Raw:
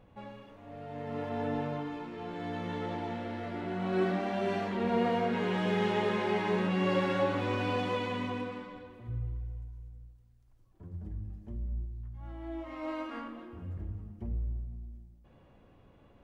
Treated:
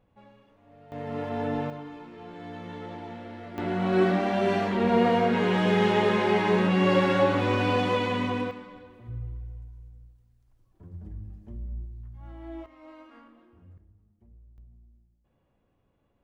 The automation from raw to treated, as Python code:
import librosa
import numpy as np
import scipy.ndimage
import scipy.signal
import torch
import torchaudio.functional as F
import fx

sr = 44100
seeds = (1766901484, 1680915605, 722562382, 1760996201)

y = fx.gain(x, sr, db=fx.steps((0.0, -8.0), (0.92, 4.0), (1.7, -3.0), (3.58, 7.0), (8.51, 0.0), (12.66, -11.5), (13.78, -20.0), (14.58, -12.0)))